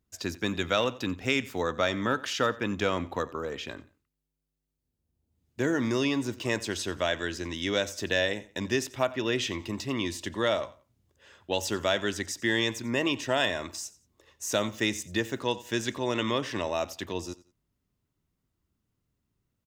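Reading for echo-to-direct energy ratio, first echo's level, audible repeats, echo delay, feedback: −19.0 dB, −19.5 dB, 2, 89 ms, 29%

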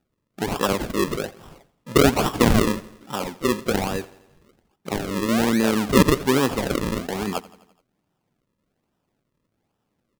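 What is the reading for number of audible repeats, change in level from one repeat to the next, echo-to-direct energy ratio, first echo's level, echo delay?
4, −4.5 dB, −18.0 dB, −20.0 dB, 85 ms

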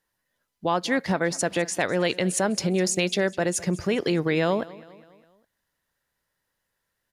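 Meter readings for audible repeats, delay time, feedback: 3, 204 ms, 50%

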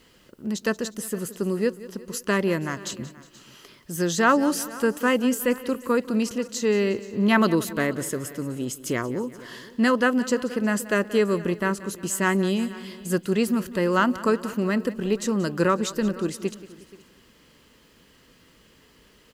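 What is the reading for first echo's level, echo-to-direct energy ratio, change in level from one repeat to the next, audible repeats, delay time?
−17.0 dB, −14.5 dB, repeats not evenly spaced, 4, 180 ms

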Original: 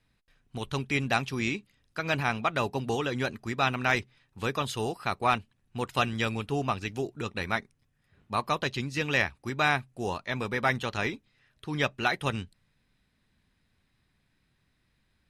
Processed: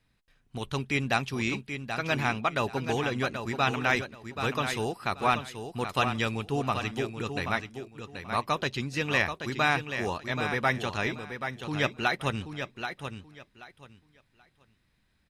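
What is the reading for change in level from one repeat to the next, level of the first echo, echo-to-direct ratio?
−13.5 dB, −8.0 dB, −8.0 dB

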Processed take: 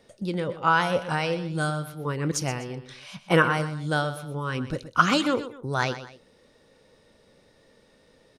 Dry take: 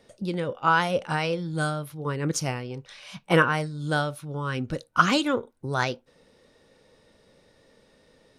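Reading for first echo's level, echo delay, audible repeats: −13.0 dB, 124 ms, 2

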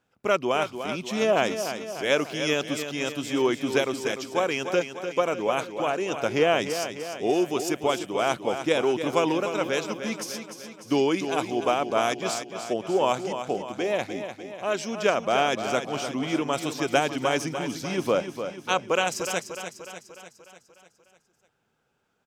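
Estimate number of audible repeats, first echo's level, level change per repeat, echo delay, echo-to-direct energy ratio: 6, −9.0 dB, −5.0 dB, 298 ms, −7.5 dB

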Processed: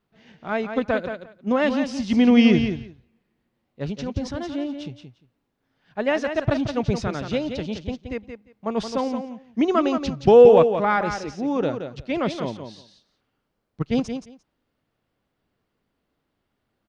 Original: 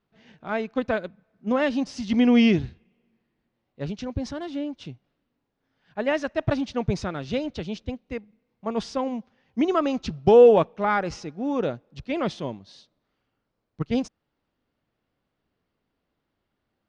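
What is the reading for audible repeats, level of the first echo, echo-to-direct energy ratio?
2, −8.0 dB, −8.0 dB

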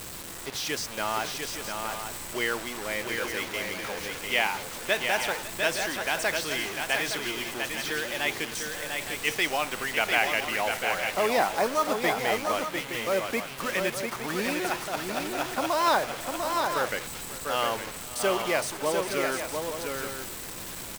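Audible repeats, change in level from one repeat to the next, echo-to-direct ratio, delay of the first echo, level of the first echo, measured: 3, repeats not evenly spaced, −3.5 dB, 547 ms, −17.5 dB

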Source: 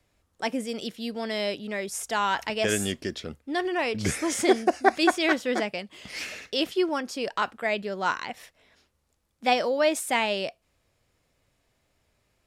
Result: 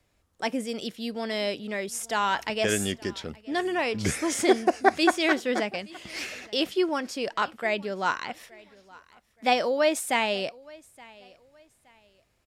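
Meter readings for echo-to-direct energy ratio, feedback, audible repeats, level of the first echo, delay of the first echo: −23.0 dB, 31%, 2, −23.5 dB, 871 ms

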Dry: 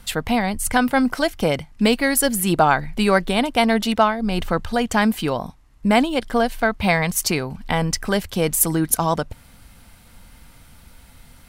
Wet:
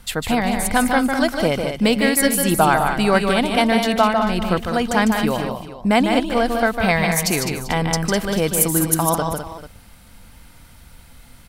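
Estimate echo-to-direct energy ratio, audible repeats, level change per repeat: −3.5 dB, 4, repeats not evenly spaced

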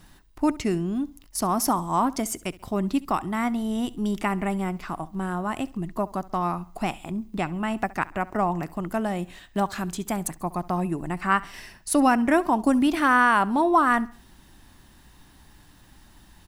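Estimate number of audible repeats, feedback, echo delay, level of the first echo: 2, 38%, 68 ms, −20.5 dB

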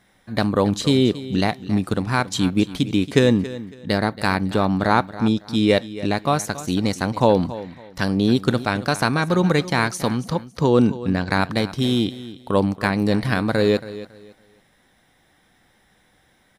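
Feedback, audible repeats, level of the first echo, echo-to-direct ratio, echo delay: 25%, 2, −15.5 dB, −15.0 dB, 277 ms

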